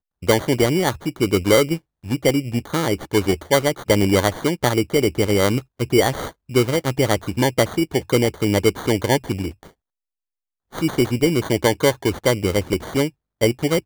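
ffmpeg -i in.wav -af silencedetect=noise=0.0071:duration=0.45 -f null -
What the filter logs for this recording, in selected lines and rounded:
silence_start: 9.69
silence_end: 10.72 | silence_duration: 1.03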